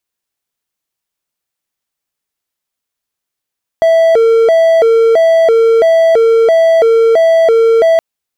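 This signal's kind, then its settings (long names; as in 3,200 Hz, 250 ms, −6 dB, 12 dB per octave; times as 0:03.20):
siren hi-lo 455–657 Hz 1.5 per second triangle −3 dBFS 4.17 s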